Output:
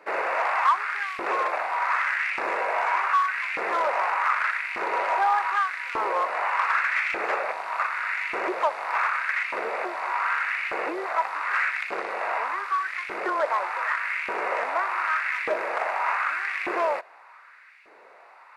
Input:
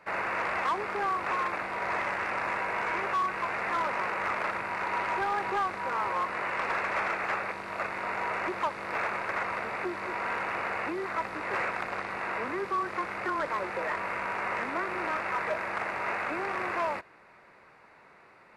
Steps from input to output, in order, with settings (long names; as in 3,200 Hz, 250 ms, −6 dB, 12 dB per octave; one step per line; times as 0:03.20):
auto-filter high-pass saw up 0.84 Hz 340–2,500 Hz
level +2.5 dB